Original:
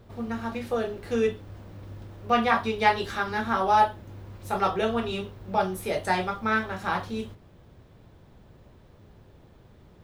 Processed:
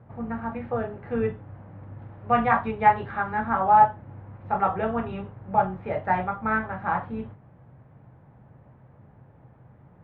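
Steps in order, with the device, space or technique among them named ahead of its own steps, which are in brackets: sub-octave bass pedal (octaver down 2 oct, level -6 dB; speaker cabinet 85–2000 Hz, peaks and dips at 130 Hz +9 dB, 380 Hz -7 dB, 820 Hz +5 dB); 1.99–2.71 bell 11000 Hz +13.5 dB 1.8 oct

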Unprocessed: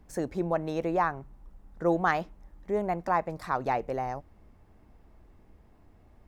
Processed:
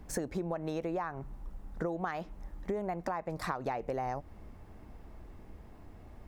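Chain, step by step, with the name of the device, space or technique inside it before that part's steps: serial compression, leveller first (compressor 3:1, threshold -28 dBFS, peak gain reduction 7 dB; compressor 8:1, threshold -38 dBFS, peak gain reduction 12.5 dB); gain +6.5 dB

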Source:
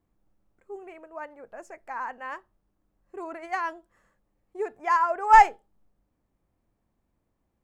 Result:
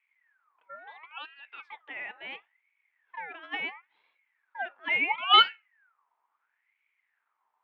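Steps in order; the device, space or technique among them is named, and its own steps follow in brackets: voice changer toy (ring modulator with a swept carrier 1600 Hz, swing 40%, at 0.73 Hz; speaker cabinet 500–3700 Hz, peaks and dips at 560 Hz -4 dB, 900 Hz +7 dB, 2300 Hz +4 dB); gain -2 dB

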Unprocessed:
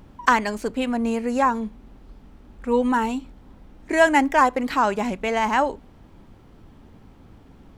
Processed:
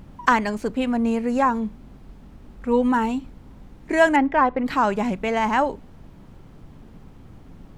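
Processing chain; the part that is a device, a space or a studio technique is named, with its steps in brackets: car interior (bell 150 Hz +6.5 dB 0.94 oct; high shelf 4400 Hz -5.5 dB; brown noise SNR 24 dB); 4.16–4.66 air absorption 270 m

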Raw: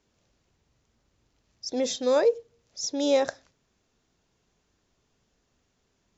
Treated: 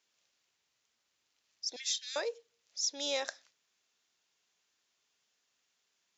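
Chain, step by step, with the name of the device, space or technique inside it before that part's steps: 1.76–2.16 steep high-pass 1600 Hz 72 dB/oct; filter by subtraction (in parallel: LPF 3000 Hz 12 dB/oct + phase invert); on the sum: gain -2.5 dB

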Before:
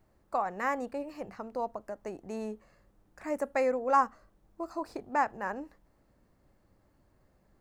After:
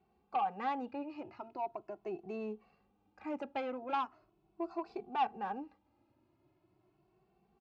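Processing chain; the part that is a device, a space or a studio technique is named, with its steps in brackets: barber-pole flanger into a guitar amplifier (endless flanger 2.2 ms +0.4 Hz; soft clip -27.5 dBFS, distortion -13 dB; speaker cabinet 87–4400 Hz, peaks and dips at 360 Hz +9 dB, 540 Hz -8 dB, 780 Hz +8 dB, 1800 Hz -9 dB, 2600 Hz +8 dB); gain -2.5 dB

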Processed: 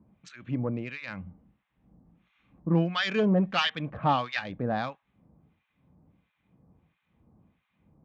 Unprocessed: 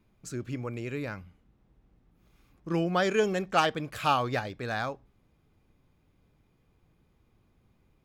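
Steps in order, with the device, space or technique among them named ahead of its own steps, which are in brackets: Wiener smoothing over 9 samples; tone controls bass +4 dB, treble +9 dB; guitar amplifier with harmonic tremolo (harmonic tremolo 1.5 Hz, depth 100%, crossover 1200 Hz; soft clip -22 dBFS, distortion -16 dB; speaker cabinet 95–4000 Hz, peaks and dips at 110 Hz -7 dB, 190 Hz +3 dB, 390 Hz -8 dB, 1400 Hz -5 dB); gain +8 dB

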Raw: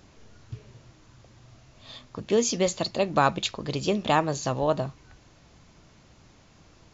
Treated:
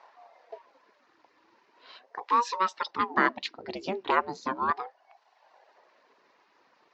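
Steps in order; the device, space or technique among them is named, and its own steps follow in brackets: reverb removal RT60 1.1 s; voice changer toy (ring modulator with a swept carrier 470 Hz, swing 60%, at 0.38 Hz; speaker cabinet 550–4500 Hz, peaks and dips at 1000 Hz +8 dB, 1800 Hz +5 dB, 3300 Hz -6 dB); 2.88–4.71 resonant low shelf 410 Hz +10.5 dB, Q 1.5

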